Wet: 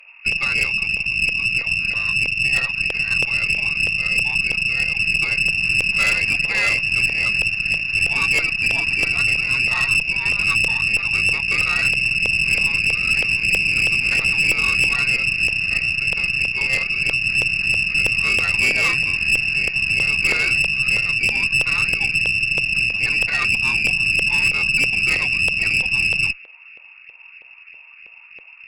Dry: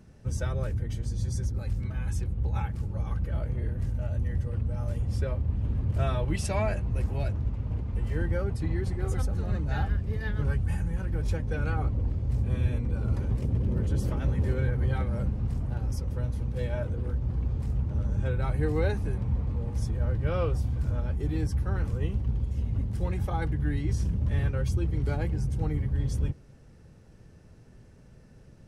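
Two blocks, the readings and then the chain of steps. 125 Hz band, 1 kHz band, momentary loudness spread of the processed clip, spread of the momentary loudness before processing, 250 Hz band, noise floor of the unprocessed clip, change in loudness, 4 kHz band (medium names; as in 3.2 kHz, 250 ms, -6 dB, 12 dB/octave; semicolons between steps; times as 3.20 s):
-7.5 dB, +6.5 dB, 3 LU, 4 LU, -2.0 dB, -52 dBFS, +13.5 dB, +28.5 dB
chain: frequency inversion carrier 2.7 kHz; LFO high-pass saw up 3.1 Hz 480–2100 Hz; valve stage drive 21 dB, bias 0.6; trim +9 dB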